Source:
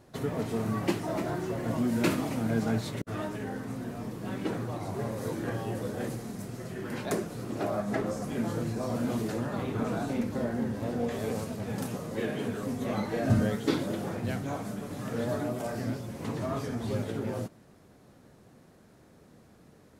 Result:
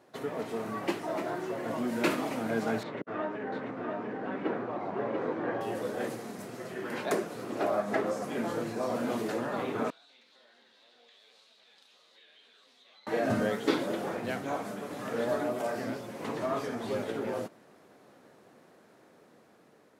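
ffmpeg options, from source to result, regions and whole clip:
ffmpeg -i in.wav -filter_complex "[0:a]asettb=1/sr,asplit=3[link_01][link_02][link_03];[link_01]atrim=end=2.834[link_04];[link_02]atrim=start=2.83:end=5.61,asetpts=PTS-STARTPTS,afade=type=in:duration=0.004:curve=qsin,afade=type=out:start_time=2.776:duration=0.004:curve=qsin,highpass=120,lowpass=2100,aecho=1:1:690:0.631,atrim=end_sample=122598[link_05];[link_03]atrim=start=5.606[link_06];[link_04][link_05]acrossfade=duration=0.004:curve1=hsin:curve2=qsin[link_07];[link_07][link_06]acrossfade=duration=0.004:curve1=qsin:curve2=hsin,asettb=1/sr,asplit=3[link_08][link_09][link_10];[link_08]atrim=end=9.904[link_11];[link_09]atrim=start=9.9:end=13.07,asetpts=PTS-STARTPTS,afade=type=in:duration=0.004:curve=qsin,afade=type=out:start_time=3.166:duration=0.004:curve=qsin,bandpass=frequency=3800:width_type=q:width=5,acompressor=threshold=-59dB:ratio=3:attack=3.2:release=140:knee=1:detection=peak[link_12];[link_10]atrim=start=13.066[link_13];[link_11][link_12]acrossfade=duration=0.004:curve1=hsin:curve2=qsin[link_14];[link_14][link_13]acrossfade=duration=0.004:curve1=qsin:curve2=hsin,highpass=130,bass=frequency=250:gain=-12,treble=frequency=4000:gain=-6,dynaudnorm=framelen=760:gausssize=5:maxgain=3.5dB" out.wav

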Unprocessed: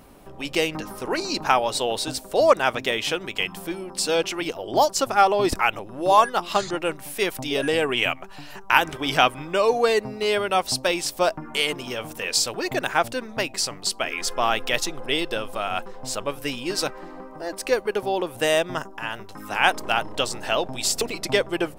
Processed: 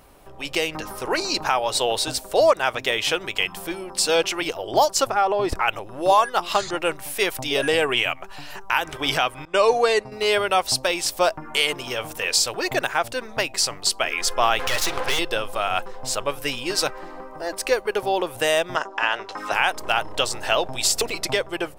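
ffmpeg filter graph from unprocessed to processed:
ffmpeg -i in.wav -filter_complex "[0:a]asettb=1/sr,asplit=3[link_01][link_02][link_03];[link_01]atrim=end=5.074[link_04];[link_02]atrim=start=5.07:end=5.68,asetpts=PTS-STARTPTS,afade=type=in:duration=0.004:curve=qsin,afade=type=out:start_time=0.606:duration=0.004:curve=qsin,highshelf=frequency=2700:gain=-11,acompressor=threshold=-20dB:ratio=2.5:attack=3.2:release=140:knee=1:detection=peak[link_05];[link_03]atrim=start=5.676[link_06];[link_04][link_05]acrossfade=duration=0.004:curve1=hsin:curve2=qsin[link_07];[link_07][link_06]acrossfade=duration=0.004:curve1=qsin:curve2=hsin,asettb=1/sr,asplit=3[link_08][link_09][link_10];[link_08]atrim=end=9.454[link_11];[link_09]atrim=start=9.45:end=10.12,asetpts=PTS-STARTPTS,afade=type=in:duration=0.004:curve=qsin,afade=type=out:start_time=0.666:duration=0.004:curve=qsin,agate=range=-33dB:threshold=-27dB:ratio=3:release=100:detection=peak,lowpass=frequency=11000:width=0.5412,lowpass=frequency=11000:width=1.3066[link_12];[link_10]atrim=start=10.116[link_13];[link_11][link_12]acrossfade=duration=0.004:curve1=hsin:curve2=qsin[link_14];[link_14][link_13]acrossfade=duration=0.004:curve1=qsin:curve2=hsin,asettb=1/sr,asplit=3[link_15][link_16][link_17];[link_15]atrim=end=14.594[link_18];[link_16]atrim=start=14.59:end=15.19,asetpts=PTS-STARTPTS,afade=type=in:duration=0.004:curve=qsin,afade=type=out:start_time=0.596:duration=0.004:curve=qsin,asplit=2[link_19][link_20];[link_20]highpass=frequency=720:poles=1,volume=23dB,asoftclip=type=tanh:threshold=-7dB[link_21];[link_19][link_21]amix=inputs=2:normalize=0,lowpass=frequency=6400:poles=1,volume=-6dB,acompressor=threshold=-19dB:ratio=5:attack=3.2:release=140:knee=1:detection=peak,aeval=exprs='max(val(0),0)':channel_layout=same[link_22];[link_17]atrim=start=15.186[link_23];[link_18][link_22]acrossfade=duration=0.004:curve1=hsin:curve2=qsin[link_24];[link_24][link_23]acrossfade=duration=0.004:curve1=qsin:curve2=hsin,asettb=1/sr,asplit=3[link_25][link_26][link_27];[link_25]atrim=end=18.764[link_28];[link_26]atrim=start=18.76:end=19.52,asetpts=PTS-STARTPTS,afade=type=in:duration=0.004:curve=qsin,afade=type=out:start_time=0.756:duration=0.004:curve=qsin,acrossover=split=270 6600:gain=0.112 1 0.0708[link_29][link_30][link_31];[link_29][link_30][link_31]amix=inputs=3:normalize=0,acontrast=82[link_32];[link_27]atrim=start=19.516[link_33];[link_28][link_32]acrossfade=duration=0.004:curve1=hsin:curve2=qsin[link_34];[link_34][link_33]acrossfade=duration=0.004:curve1=qsin:curve2=hsin,equalizer=frequency=220:width_type=o:width=1.3:gain=-8.5,alimiter=limit=-11dB:level=0:latency=1:release=268,dynaudnorm=framelen=200:gausssize=5:maxgain=4dB" out.wav

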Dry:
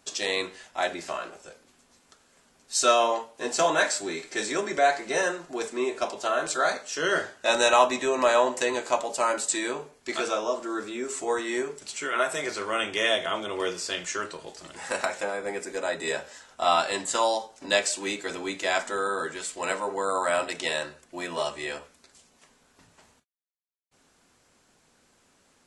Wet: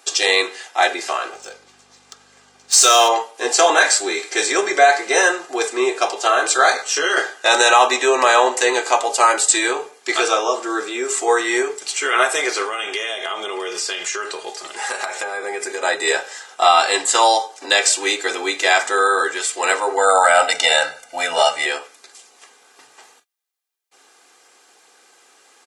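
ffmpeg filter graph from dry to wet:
ffmpeg -i in.wav -filter_complex "[0:a]asettb=1/sr,asplit=3[link_01][link_02][link_03];[link_01]atrim=end=1.324[link_04];[link_02]atrim=start=1.32:end=3.09,asetpts=PTS-STARTPTS,afade=type=in:duration=0.004:curve=qsin,afade=type=out:start_time=1.766:duration=0.004:curve=qsin,bass=frequency=250:gain=-5,treble=frequency=4000:gain=13,adynamicsmooth=sensitivity=6.5:basefreq=3300,aeval=exprs='val(0)+0.00501*(sin(2*PI*50*n/s)+sin(2*PI*2*50*n/s)/2+sin(2*PI*3*50*n/s)/3+sin(2*PI*4*50*n/s)/4+sin(2*PI*5*50*n/s)/5)':channel_layout=same[link_05];[link_03]atrim=start=3.086[link_06];[link_04][link_05]acrossfade=duration=0.004:curve1=hsin:curve2=qsin[link_07];[link_07][link_06]acrossfade=duration=0.004:curve1=qsin:curve2=hsin,asettb=1/sr,asplit=3[link_08][link_09][link_10];[link_08]atrim=end=6.774[link_11];[link_09]atrim=start=6.77:end=7.17,asetpts=PTS-STARTPTS,afade=type=in:duration=0.004:curve=qsin,afade=type=out:start_time=0.396:duration=0.004:curve=qsin,asplit=2[link_12][link_13];[link_13]adelay=14,volume=-2.5dB[link_14];[link_12][link_14]amix=inputs=2:normalize=0,atrim=end_sample=17640,acompressor=threshold=-28dB:ratio=2.5:attack=3.2:release=140:knee=1:detection=peak[link_15];[link_10]atrim=start=7.166[link_16];[link_11][link_15]acrossfade=duration=0.004:curve1=hsin:curve2=qsin[link_17];[link_17][link_16]acrossfade=duration=0.004:curve1=qsin:curve2=hsin,asettb=1/sr,asplit=3[link_18][link_19][link_20];[link_18]atrim=end=12.654[link_21];[link_19]atrim=start=12.65:end=15.83,asetpts=PTS-STARTPTS,afade=type=in:duration=0.004:curve=qsin,afade=type=out:start_time=3.176:duration=0.004:curve=qsin,aecho=1:1:4.9:0.34,atrim=end_sample=140238,acompressor=threshold=-32dB:ratio=8:attack=3.2:release=140:knee=1:detection=peak[link_22];[link_20]atrim=start=15.826[link_23];[link_21][link_22]acrossfade=duration=0.004:curve1=hsin:curve2=qsin[link_24];[link_24][link_23]acrossfade=duration=0.004:curve1=qsin:curve2=hsin,asettb=1/sr,asplit=3[link_25][link_26][link_27];[link_25]atrim=end=19.984[link_28];[link_26]atrim=start=19.98:end=21.66,asetpts=PTS-STARTPTS,afade=type=in:duration=0.004:curve=qsin,afade=type=out:start_time=1.676:duration=0.004:curve=qsin,lowshelf=frequency=470:gain=4.5,aecho=1:1:1.4:0.9,atrim=end_sample=74088[link_29];[link_27]atrim=start=21.656[link_30];[link_28][link_29]acrossfade=duration=0.004:curve1=hsin:curve2=qsin[link_31];[link_31][link_30]acrossfade=duration=0.004:curve1=qsin:curve2=hsin,highpass=500,aecho=1:1:2.5:0.53,alimiter=level_in=12.5dB:limit=-1dB:release=50:level=0:latency=1,volume=-1dB" out.wav

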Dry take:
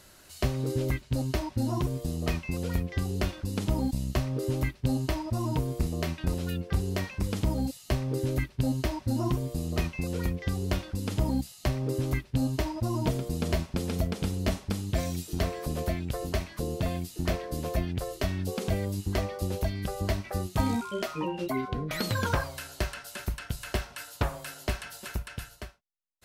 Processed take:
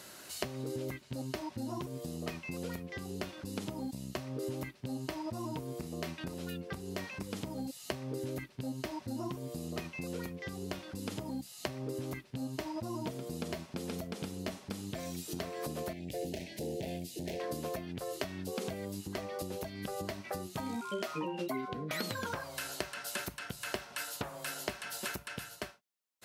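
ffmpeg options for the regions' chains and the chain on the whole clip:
ffmpeg -i in.wav -filter_complex "[0:a]asettb=1/sr,asplit=3[link_01][link_02][link_03];[link_01]atrim=end=15.934[link_04];[link_02]atrim=start=15.93:end=17.4,asetpts=PTS-STARTPTS,afade=type=in:duration=0.004:curve=qsin,afade=type=out:start_time=1.466:duration=0.004:curve=qsin,highshelf=frequency=4100:gain=-4.5,asoftclip=type=hard:threshold=-30dB,asuperstop=centerf=1200:order=4:qfactor=0.84[link_05];[link_03]atrim=start=17.396[link_06];[link_04][link_05]acrossfade=duration=0.004:curve1=hsin:curve2=qsin[link_07];[link_07][link_06]acrossfade=duration=0.004:curve1=qsin:curve2=hsin,acompressor=threshold=-37dB:ratio=10,highpass=170,volume=4.5dB" out.wav

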